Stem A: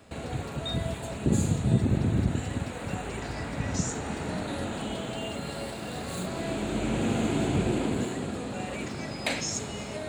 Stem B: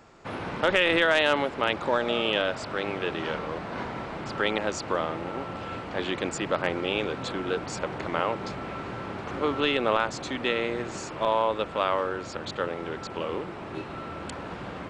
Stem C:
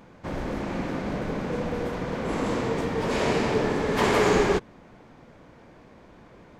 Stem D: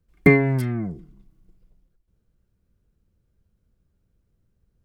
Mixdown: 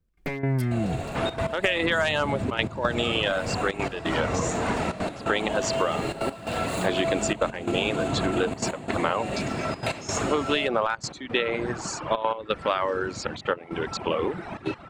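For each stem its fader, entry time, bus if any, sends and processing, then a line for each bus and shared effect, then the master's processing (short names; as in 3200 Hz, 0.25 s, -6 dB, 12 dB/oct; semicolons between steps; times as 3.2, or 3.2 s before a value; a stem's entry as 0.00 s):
-5.0 dB, 0.60 s, no send, limiter -22.5 dBFS, peak gain reduction 10 dB; small resonant body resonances 660/2700 Hz, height 12 dB
+0.5 dB, 0.90 s, no send, reverb removal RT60 1.6 s
-5.5 dB, 1.65 s, no send, compressor, threshold -35 dBFS, peak gain reduction 17 dB
-4.0 dB, 0.00 s, no send, one-sided fold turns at -12 dBFS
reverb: off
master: AGC gain up to 8 dB; step gate "x.x..xxxxxxxxx" 174 bpm -12 dB; compressor 6:1, threshold -20 dBFS, peak gain reduction 9 dB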